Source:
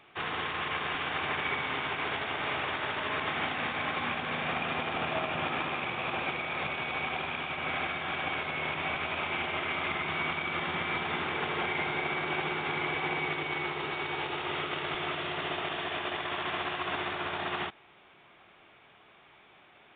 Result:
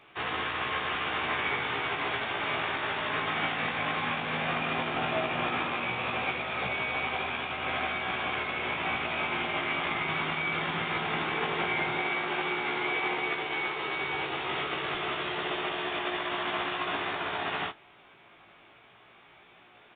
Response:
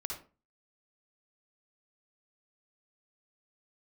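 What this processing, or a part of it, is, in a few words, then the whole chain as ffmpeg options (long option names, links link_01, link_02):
double-tracked vocal: -filter_complex "[0:a]asplit=2[link_01][link_02];[link_02]adelay=25,volume=-14dB[link_03];[link_01][link_03]amix=inputs=2:normalize=0,flanger=delay=15.5:depth=2.5:speed=0.14,asettb=1/sr,asplit=3[link_04][link_05][link_06];[link_04]atrim=end=12.014[link_07];[link_05]atrim=start=12.01:end=13.95,asetpts=PTS-STARTPTS,afade=type=in:duration=0.004:curve=qsin,afade=type=out:start_time=1.936:duration=0.004:curve=qsin,lowshelf=frequency=180:gain=-8.5[link_08];[link_06]atrim=start=13.946[link_09];[link_07][link_08]acrossfade=duration=0.004:curve1=hsin:curve2=qsin[link_10];[link_10][link_09]acrossfade=duration=0.004:curve1=qsin:curve2=hsin,volume=4.5dB"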